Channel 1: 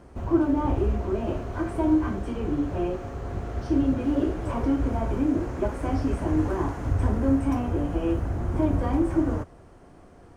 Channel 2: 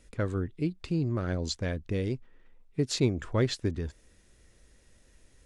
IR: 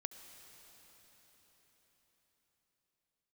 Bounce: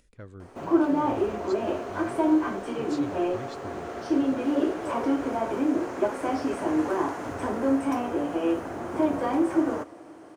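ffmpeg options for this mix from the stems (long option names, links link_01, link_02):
-filter_complex "[0:a]highpass=340,adelay=400,volume=2dB,asplit=2[link_01][link_02];[link_02]volume=-9dB[link_03];[1:a]acompressor=mode=upward:threshold=-44dB:ratio=2.5,volume=-16dB,asplit=2[link_04][link_05];[link_05]volume=-7.5dB[link_06];[2:a]atrim=start_sample=2205[link_07];[link_03][link_06]amix=inputs=2:normalize=0[link_08];[link_08][link_07]afir=irnorm=-1:irlink=0[link_09];[link_01][link_04][link_09]amix=inputs=3:normalize=0"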